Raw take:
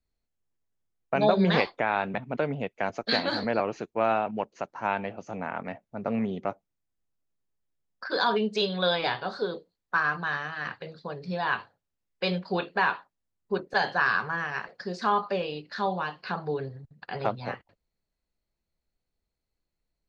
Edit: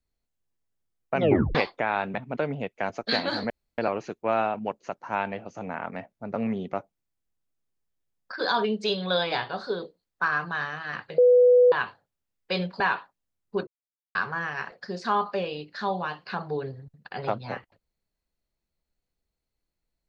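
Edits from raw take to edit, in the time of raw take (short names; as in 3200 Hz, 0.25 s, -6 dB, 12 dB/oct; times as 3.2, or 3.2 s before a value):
1.17 tape stop 0.38 s
3.5 insert room tone 0.28 s
10.9–11.44 bleep 494 Hz -13 dBFS
12.52–12.77 cut
13.64–14.12 mute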